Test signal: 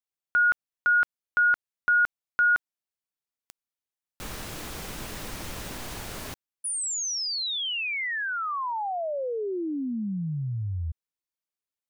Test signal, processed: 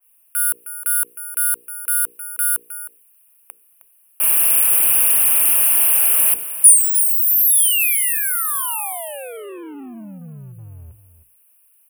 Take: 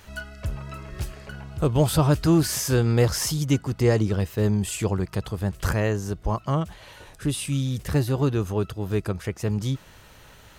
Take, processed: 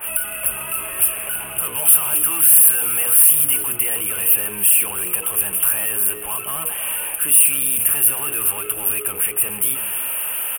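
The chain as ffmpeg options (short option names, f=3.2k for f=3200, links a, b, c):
-filter_complex "[0:a]bass=f=250:g=-10,treble=f=4k:g=-7,bandreject=f=60:t=h:w=6,bandreject=f=120:t=h:w=6,bandreject=f=180:t=h:w=6,bandreject=f=240:t=h:w=6,bandreject=f=300:t=h:w=6,bandreject=f=360:t=h:w=6,bandreject=f=420:t=h:w=6,bandreject=f=480:t=h:w=6,acrossover=split=1000[a][b];[a]acompressor=threshold=-40dB:ratio=5:attack=0.11:release=30:knee=1[c];[c][b]amix=inputs=2:normalize=0,asoftclip=type=hard:threshold=-34dB,asplit=2[d][e];[e]highpass=f=720:p=1,volume=24dB,asoftclip=type=tanh:threshold=-34dB[f];[d][f]amix=inputs=2:normalize=0,lowpass=f=5.6k:p=1,volume=-6dB,asuperstop=centerf=5200:order=12:qfactor=0.75,aexciter=amount=11.8:drive=9:freq=3.2k,asplit=2[g][h];[h]aecho=0:1:312:0.237[i];[g][i]amix=inputs=2:normalize=0,apsyclip=11dB,adynamicequalizer=threshold=0.02:dfrequency=2300:dqfactor=0.7:tfrequency=2300:tqfactor=0.7:attack=5:release=100:ratio=0.417:range=2:mode=boostabove:tftype=highshelf,volume=-6dB"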